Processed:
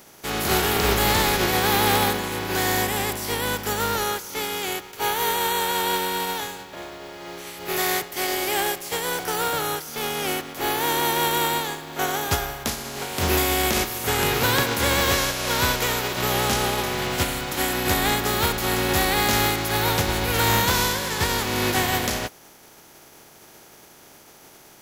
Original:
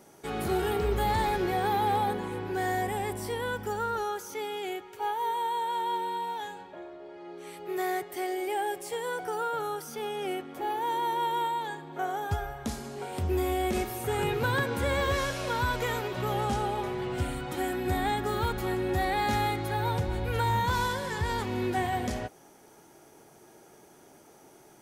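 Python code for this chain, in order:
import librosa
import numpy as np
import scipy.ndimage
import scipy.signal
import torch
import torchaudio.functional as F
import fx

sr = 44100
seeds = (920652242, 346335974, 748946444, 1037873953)

y = fx.spec_flatten(x, sr, power=0.49)
y = fx.peak_eq(y, sr, hz=8800.0, db=-8.0, octaves=0.23)
y = y * librosa.db_to_amplitude(7.0)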